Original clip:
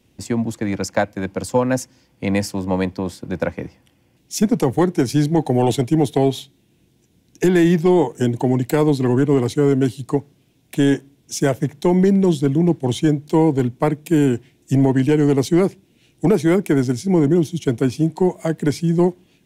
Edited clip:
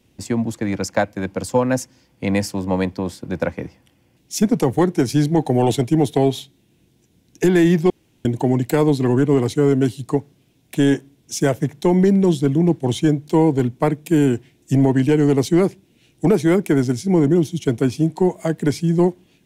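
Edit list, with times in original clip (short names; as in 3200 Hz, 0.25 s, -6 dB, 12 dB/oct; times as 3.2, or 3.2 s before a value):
7.9–8.25 room tone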